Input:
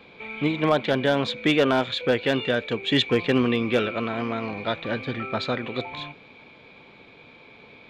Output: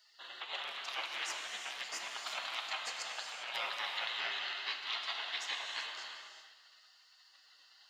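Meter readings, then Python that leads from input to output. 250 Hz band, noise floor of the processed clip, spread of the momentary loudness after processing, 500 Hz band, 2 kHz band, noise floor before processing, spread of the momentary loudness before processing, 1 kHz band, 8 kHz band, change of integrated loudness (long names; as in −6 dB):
below −40 dB, −65 dBFS, 9 LU, −29.0 dB, −10.5 dB, −50 dBFS, 8 LU, −13.0 dB, can't be measured, −14.0 dB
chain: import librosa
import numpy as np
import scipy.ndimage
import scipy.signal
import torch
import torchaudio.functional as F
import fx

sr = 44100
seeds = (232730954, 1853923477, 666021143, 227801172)

y = fx.spec_gate(x, sr, threshold_db=-25, keep='weak')
y = scipy.signal.sosfilt(scipy.signal.butter(2, 560.0, 'highpass', fs=sr, output='sos'), y)
y = fx.over_compress(y, sr, threshold_db=-44.0, ratio=-0.5)
y = y + 10.0 ** (-19.5 / 20.0) * np.pad(y, (int(469 * sr / 1000.0), 0))[:len(y)]
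y = fx.rev_gated(y, sr, seeds[0], gate_ms=430, shape='flat', drr_db=2.0)
y = y * librosa.db_to_amplitude(3.5)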